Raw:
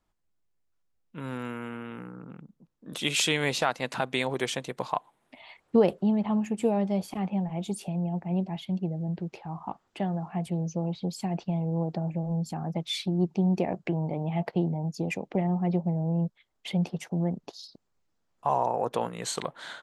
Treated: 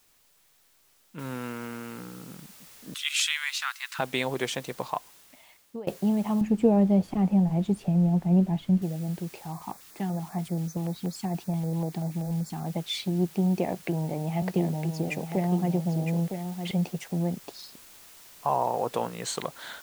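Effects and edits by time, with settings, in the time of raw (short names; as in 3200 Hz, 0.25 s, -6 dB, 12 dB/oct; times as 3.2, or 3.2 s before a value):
1.19 noise floor step -64 dB -51 dB
2.94–3.99 steep high-pass 1200 Hz
4.72–5.87 fade out, to -23 dB
6.41–8.82 tilt -3 dB/oct
9.52–12.66 LFO notch square 5.2 Hz 560–2900 Hz
13.46–16.71 echo 0.96 s -7.5 dB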